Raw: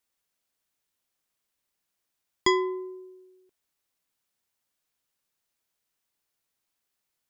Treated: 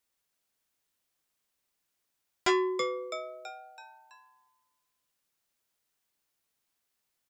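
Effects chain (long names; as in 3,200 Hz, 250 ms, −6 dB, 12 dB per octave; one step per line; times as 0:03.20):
echo with shifted repeats 329 ms, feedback 47%, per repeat +130 Hz, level −9 dB
saturating transformer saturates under 1,700 Hz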